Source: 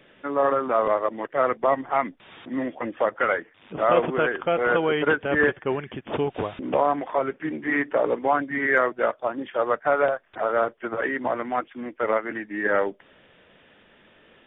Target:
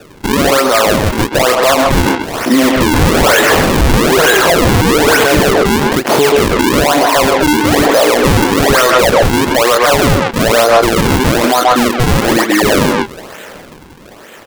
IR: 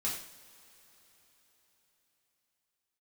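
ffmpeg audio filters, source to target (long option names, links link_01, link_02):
-filter_complex "[0:a]asettb=1/sr,asplit=3[link_01][link_02][link_03];[link_01]atrim=end=2.814[link_04];[link_02]atrim=start=2.81:end=5.24,asetpts=PTS-STARTPTS,afade=type=in:duration=0.004:curve=qsin,afade=type=out:start_time=2.426:duration=0.004:curve=qsin,aeval=exprs='val(0)+0.5*0.0668*sgn(val(0))':channel_layout=same[link_05];[link_03]atrim=start=5.236[link_06];[link_04][link_05]acrossfade=duration=0.004:curve1=hsin:curve2=qsin[link_07];[link_07][link_06]acrossfade=duration=0.004:curve1=qsin:curve2=hsin,highpass=frequency=160:poles=1,asplit=2[link_08][link_09];[link_09]adelay=26,volume=-9.5dB[link_10];[link_08][link_10]amix=inputs=2:normalize=0,acrusher=samples=41:mix=1:aa=0.000001:lfo=1:lforange=65.6:lforate=1.1,asoftclip=type=hard:threshold=-18.5dB,lowshelf=frequency=350:gain=-5.5,asplit=2[link_11][link_12];[link_12]adelay=130,highpass=300,lowpass=3400,asoftclip=type=hard:threshold=-23.5dB,volume=-7dB[link_13];[link_11][link_13]amix=inputs=2:normalize=0,dynaudnorm=framelen=280:gausssize=13:maxgain=11.5dB,alimiter=level_in=20.5dB:limit=-1dB:release=50:level=0:latency=1,volume=-1dB"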